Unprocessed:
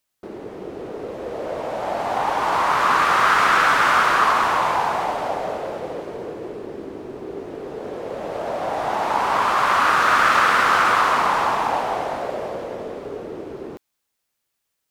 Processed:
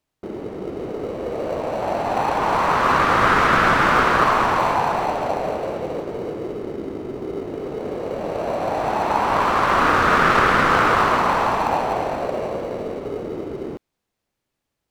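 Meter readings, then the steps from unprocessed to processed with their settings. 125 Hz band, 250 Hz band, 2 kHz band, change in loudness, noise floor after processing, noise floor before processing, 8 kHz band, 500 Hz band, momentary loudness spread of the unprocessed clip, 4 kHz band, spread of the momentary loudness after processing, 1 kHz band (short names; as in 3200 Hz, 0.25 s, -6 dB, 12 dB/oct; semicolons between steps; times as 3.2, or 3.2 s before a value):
+9.0 dB, +6.5 dB, -0.5 dB, -1.0 dB, -80 dBFS, -77 dBFS, -3.5 dB, +3.5 dB, 18 LU, -2.0 dB, 14 LU, 0.0 dB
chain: in parallel at -10 dB: sample-rate reducer 1700 Hz, jitter 0%; on the sum: LPF 3800 Hz 6 dB/oct; low shelf 360 Hz +4.5 dB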